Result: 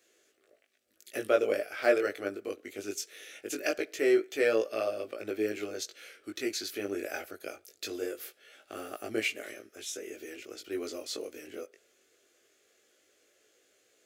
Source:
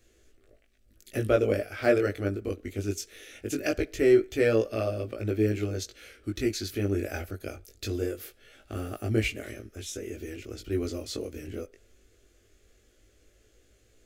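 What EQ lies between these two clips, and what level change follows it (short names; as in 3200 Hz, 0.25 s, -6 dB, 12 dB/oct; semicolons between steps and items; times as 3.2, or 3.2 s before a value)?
HPF 450 Hz 12 dB/oct; 0.0 dB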